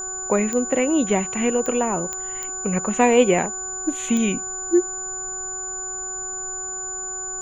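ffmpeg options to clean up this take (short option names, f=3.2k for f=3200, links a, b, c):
-af "adeclick=t=4,bandreject=f=374.3:t=h:w=4,bandreject=f=748.6:t=h:w=4,bandreject=f=1.1229k:t=h:w=4,bandreject=f=1.4972k:t=h:w=4,bandreject=f=7k:w=30,agate=range=-21dB:threshold=-22dB"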